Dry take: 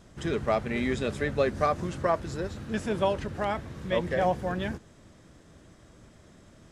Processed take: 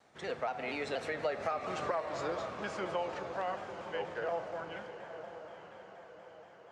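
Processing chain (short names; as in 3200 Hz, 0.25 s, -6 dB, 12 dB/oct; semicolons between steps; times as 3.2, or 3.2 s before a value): Doppler pass-by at 1.7, 39 m/s, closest 23 m; three-band isolator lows -20 dB, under 560 Hz, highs -17 dB, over 7400 Hz; on a send at -11.5 dB: reverb RT60 2.8 s, pre-delay 4 ms; on the sum: compressor, threshold -37 dBFS, peak gain reduction 13.5 dB; diffused feedback echo 0.949 s, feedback 51%, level -11 dB; in parallel at +1 dB: limiter -35 dBFS, peak gain reduction 9 dB; on the sum: HPF 98 Hz 12 dB/oct; tilt shelf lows +4.5 dB, about 1100 Hz; shaped vibrato saw down 4.2 Hz, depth 100 cents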